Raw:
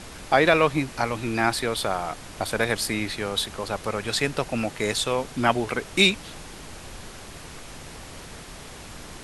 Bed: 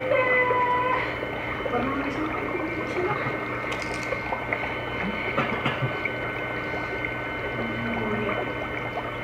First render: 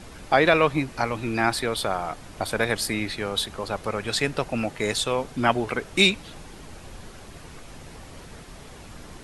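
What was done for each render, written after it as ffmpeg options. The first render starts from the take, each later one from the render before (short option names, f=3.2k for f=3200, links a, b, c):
-af "afftdn=nr=6:nf=-42"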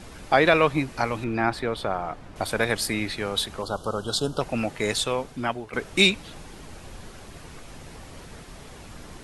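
-filter_complex "[0:a]asettb=1/sr,asplit=3[a][b][c];[a]atrim=end=1.244[d];[b]atrim=start=1.24:end=2.36,asetpts=PTS-STARTPTS,afade=t=in:d=0.004:c=qsin,afade=t=out:st=1.116:d=0.004:c=qsin,lowpass=f=1.7k:p=1[e];[c]atrim=start=2.356[f];[d][e]acrossfade=d=0.004:c1=hsin:c2=qsin[g];[g][f]acrossfade=d=0.004:c1=qsin:c2=hsin,asettb=1/sr,asplit=3[h][i][j];[h]atrim=end=3.624[k];[i]atrim=start=3.62:end=4.41,asetpts=PTS-STARTPTS,afade=t=in:d=0.004:c=qsin,afade=t=out:st=0.786:d=0.004:c=qsin,asuperstop=centerf=2100:order=12:qfactor=1.5[l];[j]atrim=start=4.406[m];[k][l]acrossfade=d=0.004:c1=hsin:c2=qsin[n];[n][m]acrossfade=d=0.004:c1=qsin:c2=hsin,asplit=2[o][p];[o]atrim=end=5.73,asetpts=PTS-STARTPTS,afade=t=out:st=5.01:d=0.72:silence=0.199526[q];[p]atrim=start=5.73,asetpts=PTS-STARTPTS,afade=t=in:d=0.004:c=hsin:silence=0.199526[r];[q][r]concat=n=2:v=0:a=1"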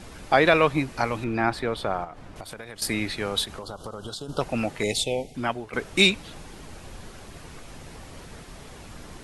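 -filter_complex "[0:a]asettb=1/sr,asplit=3[a][b][c];[a]atrim=end=2.044[d];[b]atrim=start=2.04:end=2.82,asetpts=PTS-STARTPTS,afade=t=in:d=0.004:c=qsin,afade=t=out:st=0.776:d=0.004:c=qsin,acompressor=threshold=-35dB:ratio=8:attack=3.2:release=140:knee=1:detection=peak[e];[c]atrim=start=2.816[f];[d][e]acrossfade=d=0.004:c1=hsin:c2=qsin[g];[g][f]acrossfade=d=0.004:c1=qsin:c2=hsin,asplit=3[h][i][j];[h]afade=t=out:st=3.44:d=0.02[k];[i]acompressor=threshold=-31dB:ratio=12:attack=3.2:release=140:knee=1:detection=peak,afade=t=in:st=3.44:d=0.02,afade=t=out:st=4.28:d=0.02[l];[j]afade=t=in:st=4.28:d=0.02[m];[k][l][m]amix=inputs=3:normalize=0,asettb=1/sr,asplit=3[n][o][p];[n]atrim=end=4.834[q];[o]atrim=start=4.83:end=5.35,asetpts=PTS-STARTPTS,afade=t=in:d=0.004:c=qsin,afade=t=out:st=0.516:d=0.004:c=qsin,asuperstop=centerf=1300:order=12:qfactor=1.1[r];[p]atrim=start=5.346[s];[q][r]acrossfade=d=0.004:c1=hsin:c2=qsin[t];[t][s]acrossfade=d=0.004:c1=qsin:c2=hsin"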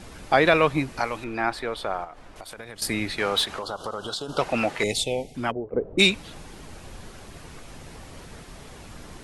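-filter_complex "[0:a]asettb=1/sr,asplit=3[a][b][c];[a]atrim=end=0.994[d];[b]atrim=start=0.99:end=2.58,asetpts=PTS-STARTPTS,afade=t=in:d=0.004:c=qsin,afade=t=out:st=1.586:d=0.004:c=qsin,equalizer=f=130:w=0.58:g=-10[e];[c]atrim=start=2.576[f];[d][e]acrossfade=d=0.004:c1=hsin:c2=qsin[g];[g][f]acrossfade=d=0.004:c1=qsin:c2=hsin,asettb=1/sr,asplit=3[h][i][j];[h]atrim=end=3.184[k];[i]atrim=start=3.18:end=4.84,asetpts=PTS-STARTPTS,afade=t=in:d=0.004:c=qsin,afade=t=out:st=1.656:d=0.004:c=qsin,asplit=2[l][m];[m]highpass=f=720:p=1,volume=14dB,asoftclip=type=tanh:threshold=-10dB[n];[l][n]amix=inputs=2:normalize=0,lowpass=f=3.6k:p=1,volume=-6dB[o];[j]atrim=start=4.836[p];[k][o]acrossfade=d=0.004:c1=hsin:c2=qsin[q];[q][p]acrossfade=d=0.004:c1=qsin:c2=hsin,asplit=3[r][s][t];[r]afade=t=out:st=5.5:d=0.02[u];[s]lowpass=f=500:t=q:w=2.4,afade=t=in:st=5.5:d=0.02,afade=t=out:st=5.98:d=0.02[v];[t]afade=t=in:st=5.98:d=0.02[w];[u][v][w]amix=inputs=3:normalize=0"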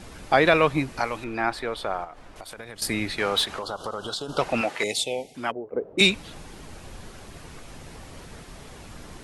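-filter_complex "[0:a]asettb=1/sr,asplit=3[a][b][c];[a]atrim=end=4.614[d];[b]atrim=start=4.61:end=6.01,asetpts=PTS-STARTPTS,afade=t=in:d=0.004:c=qsin,afade=t=out:st=1.396:d=0.004:c=qsin,highpass=f=380:p=1[e];[c]atrim=start=6.006[f];[d][e]acrossfade=d=0.004:c1=hsin:c2=qsin[g];[g][f]acrossfade=d=0.004:c1=qsin:c2=hsin"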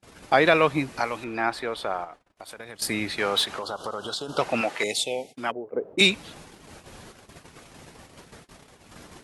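-af "agate=range=-35dB:threshold=-41dB:ratio=16:detection=peak,highpass=f=130:p=1"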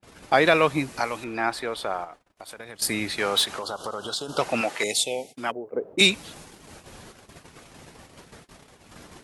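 -af "adynamicequalizer=threshold=0.00891:dfrequency=5000:dqfactor=0.7:tfrequency=5000:tqfactor=0.7:attack=5:release=100:ratio=0.375:range=3:mode=boostabove:tftype=highshelf"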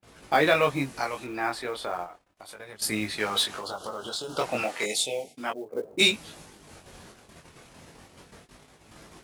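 -af "flanger=delay=18.5:depth=5.5:speed=0.33,acrusher=bits=7:mode=log:mix=0:aa=0.000001"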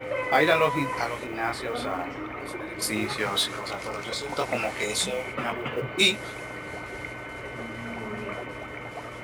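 -filter_complex "[1:a]volume=-7.5dB[a];[0:a][a]amix=inputs=2:normalize=0"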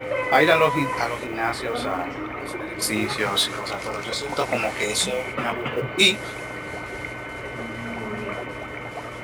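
-af "volume=4dB"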